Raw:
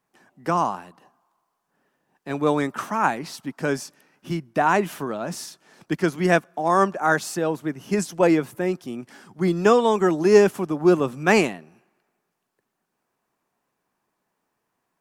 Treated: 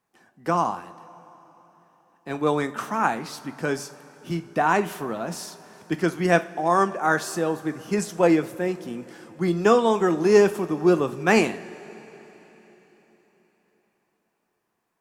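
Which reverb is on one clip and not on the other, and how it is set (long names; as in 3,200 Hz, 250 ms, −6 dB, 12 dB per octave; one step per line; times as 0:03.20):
coupled-rooms reverb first 0.33 s, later 4.2 s, from −18 dB, DRR 9 dB
level −1.5 dB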